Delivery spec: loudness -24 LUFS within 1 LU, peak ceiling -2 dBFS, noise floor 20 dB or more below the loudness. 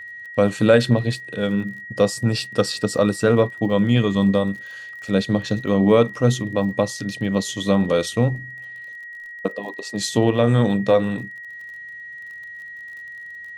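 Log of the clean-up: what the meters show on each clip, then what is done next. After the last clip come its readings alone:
tick rate 38 per s; steady tone 1.9 kHz; tone level -34 dBFS; loudness -20.5 LUFS; peak level -3.5 dBFS; loudness target -24.0 LUFS
-> de-click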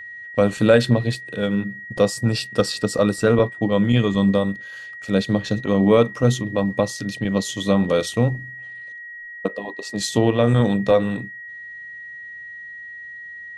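tick rate 0.074 per s; steady tone 1.9 kHz; tone level -34 dBFS
-> band-stop 1.9 kHz, Q 30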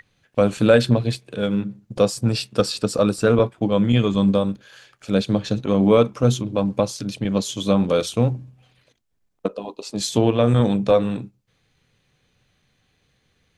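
steady tone not found; loudness -20.5 LUFS; peak level -3.5 dBFS; loudness target -24.0 LUFS
-> trim -3.5 dB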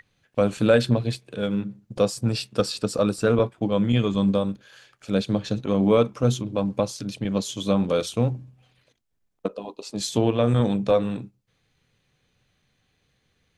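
loudness -24.0 LUFS; peak level -7.0 dBFS; noise floor -71 dBFS

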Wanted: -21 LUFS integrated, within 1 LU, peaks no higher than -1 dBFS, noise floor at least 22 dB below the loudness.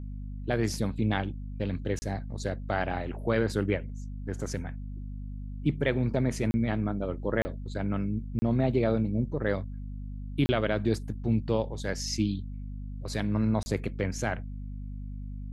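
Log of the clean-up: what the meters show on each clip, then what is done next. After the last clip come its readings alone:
dropouts 6; longest dropout 30 ms; hum 50 Hz; highest harmonic 250 Hz; hum level -35 dBFS; loudness -30.5 LUFS; peak level -11.5 dBFS; loudness target -21.0 LUFS
-> interpolate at 1.99/6.51/7.42/8.39/10.46/13.63 s, 30 ms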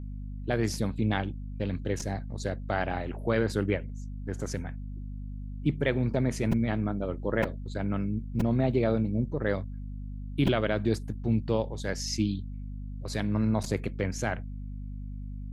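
dropouts 0; hum 50 Hz; highest harmonic 250 Hz; hum level -35 dBFS
-> hum notches 50/100/150/200/250 Hz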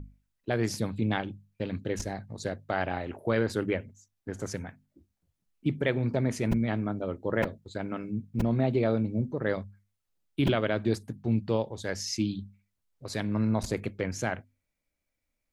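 hum not found; loudness -31.0 LUFS; peak level -12.5 dBFS; loudness target -21.0 LUFS
-> trim +10 dB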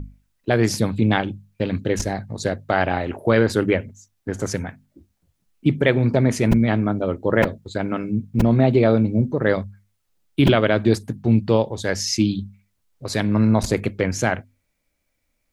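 loudness -21.0 LUFS; peak level -2.5 dBFS; noise floor -73 dBFS

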